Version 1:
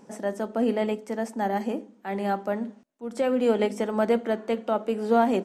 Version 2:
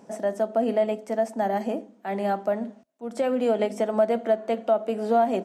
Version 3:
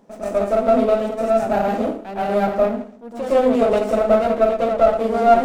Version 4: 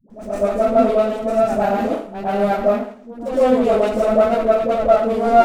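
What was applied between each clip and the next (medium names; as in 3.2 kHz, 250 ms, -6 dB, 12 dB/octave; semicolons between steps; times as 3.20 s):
high-pass 61 Hz; peaking EQ 660 Hz +12 dB 0.22 oct; compression 2:1, threshold -21 dBFS, peak gain reduction 6 dB
plate-style reverb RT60 0.52 s, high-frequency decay 0.8×, pre-delay 100 ms, DRR -8.5 dB; sliding maximum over 9 samples; trim -2.5 dB
phase dispersion highs, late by 103 ms, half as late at 440 Hz; trim +1 dB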